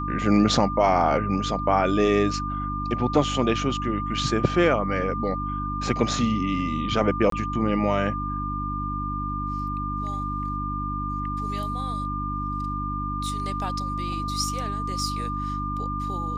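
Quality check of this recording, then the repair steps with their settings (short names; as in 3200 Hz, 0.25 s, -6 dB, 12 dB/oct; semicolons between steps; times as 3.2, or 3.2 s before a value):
hum 50 Hz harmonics 6 -31 dBFS
tone 1200 Hz -29 dBFS
7.3–7.32 gap 23 ms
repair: de-hum 50 Hz, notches 6; notch 1200 Hz, Q 30; interpolate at 7.3, 23 ms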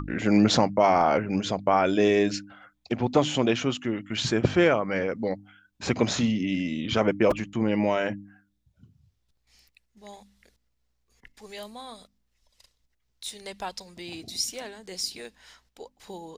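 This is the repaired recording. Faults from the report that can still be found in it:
none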